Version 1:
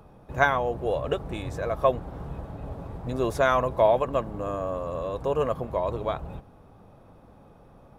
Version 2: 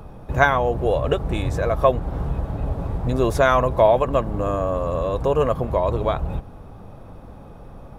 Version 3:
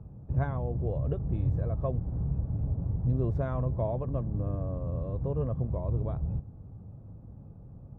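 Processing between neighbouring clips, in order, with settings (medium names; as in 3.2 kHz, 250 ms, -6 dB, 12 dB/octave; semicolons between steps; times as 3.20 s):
bass shelf 78 Hz +9.5 dB; in parallel at -0.5 dB: compression, threshold -30 dBFS, peak gain reduction 14.5 dB; on the sum: trim +3 dB
band-pass filter 110 Hz, Q 1.3; trim -1 dB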